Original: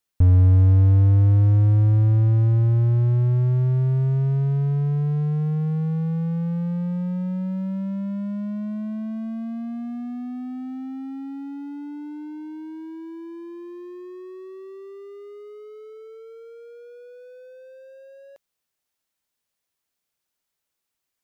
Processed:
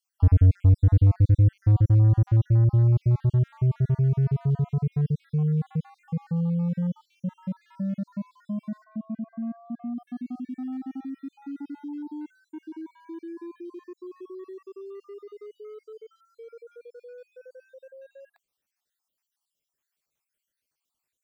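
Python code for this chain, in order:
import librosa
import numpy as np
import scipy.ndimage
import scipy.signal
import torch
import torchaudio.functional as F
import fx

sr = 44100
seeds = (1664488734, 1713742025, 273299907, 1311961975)

y = fx.spec_dropout(x, sr, seeds[0], share_pct=56)
y = fx.lowpass(y, sr, hz=1400.0, slope=12, at=(8.84, 9.98))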